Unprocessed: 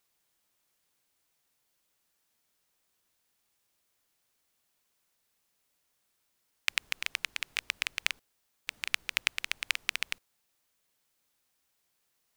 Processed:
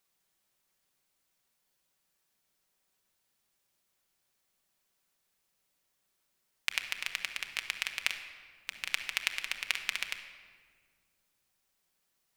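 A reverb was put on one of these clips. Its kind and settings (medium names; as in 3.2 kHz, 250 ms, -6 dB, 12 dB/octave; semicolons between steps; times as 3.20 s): simulated room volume 2600 m³, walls mixed, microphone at 1.1 m; trim -2.5 dB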